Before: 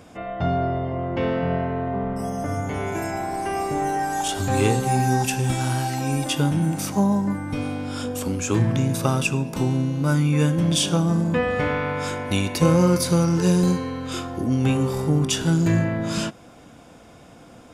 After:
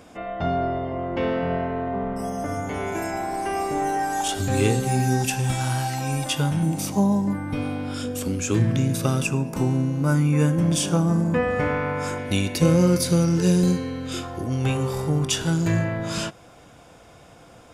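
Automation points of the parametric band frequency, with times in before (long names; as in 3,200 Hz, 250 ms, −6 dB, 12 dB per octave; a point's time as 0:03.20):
parametric band −8 dB 0.8 octaves
120 Hz
from 0:04.35 970 Hz
from 0:05.30 320 Hz
from 0:06.63 1,500 Hz
from 0:07.33 6,800 Hz
from 0:07.94 910 Hz
from 0:09.22 3,600 Hz
from 0:12.18 1,000 Hz
from 0:14.23 240 Hz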